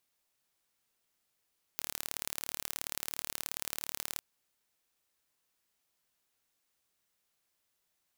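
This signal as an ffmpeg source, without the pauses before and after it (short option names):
-f lavfi -i "aevalsrc='0.422*eq(mod(n,1189),0)*(0.5+0.5*eq(mod(n,2378),0))':d=2.41:s=44100"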